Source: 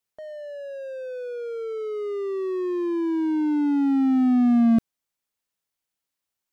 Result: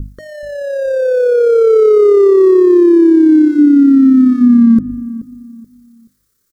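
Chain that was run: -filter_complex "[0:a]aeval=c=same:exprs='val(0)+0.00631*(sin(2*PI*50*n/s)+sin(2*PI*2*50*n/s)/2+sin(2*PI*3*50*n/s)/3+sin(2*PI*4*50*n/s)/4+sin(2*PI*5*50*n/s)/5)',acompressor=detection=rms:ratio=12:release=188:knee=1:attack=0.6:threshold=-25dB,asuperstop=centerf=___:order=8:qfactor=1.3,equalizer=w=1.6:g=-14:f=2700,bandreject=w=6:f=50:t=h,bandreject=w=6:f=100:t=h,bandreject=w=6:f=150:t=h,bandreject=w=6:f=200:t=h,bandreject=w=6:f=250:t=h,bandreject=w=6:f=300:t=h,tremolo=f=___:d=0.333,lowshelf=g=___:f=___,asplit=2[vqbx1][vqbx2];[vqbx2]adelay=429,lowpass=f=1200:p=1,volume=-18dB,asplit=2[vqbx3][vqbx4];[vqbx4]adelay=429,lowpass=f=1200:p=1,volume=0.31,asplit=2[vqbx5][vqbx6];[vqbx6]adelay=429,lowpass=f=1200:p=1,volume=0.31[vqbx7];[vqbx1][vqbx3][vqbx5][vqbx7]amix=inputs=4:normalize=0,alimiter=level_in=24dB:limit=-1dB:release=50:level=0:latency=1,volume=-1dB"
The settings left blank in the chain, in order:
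770, 34, 5.5, 270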